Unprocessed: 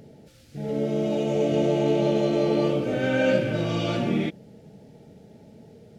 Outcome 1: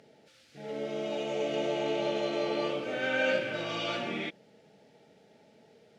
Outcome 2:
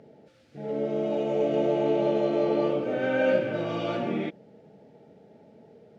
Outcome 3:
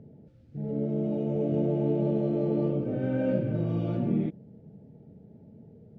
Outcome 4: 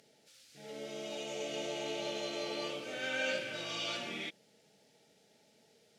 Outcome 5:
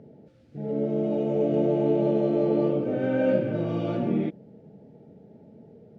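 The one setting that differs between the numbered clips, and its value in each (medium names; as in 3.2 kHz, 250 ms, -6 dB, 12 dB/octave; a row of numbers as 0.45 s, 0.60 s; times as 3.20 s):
band-pass filter, frequency: 2.2 kHz, 800 Hz, 120 Hz, 6 kHz, 310 Hz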